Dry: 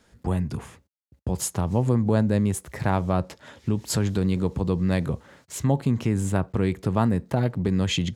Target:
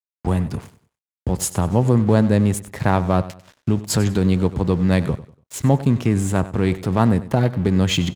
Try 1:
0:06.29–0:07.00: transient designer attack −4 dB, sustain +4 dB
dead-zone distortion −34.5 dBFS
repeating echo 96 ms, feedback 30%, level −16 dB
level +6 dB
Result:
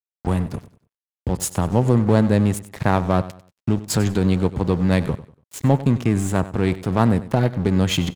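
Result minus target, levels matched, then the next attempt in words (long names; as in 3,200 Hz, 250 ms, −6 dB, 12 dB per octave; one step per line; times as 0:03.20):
dead-zone distortion: distortion +6 dB
0:06.29–0:07.00: transient designer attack −4 dB, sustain +4 dB
dead-zone distortion −41.5 dBFS
repeating echo 96 ms, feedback 30%, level −16 dB
level +6 dB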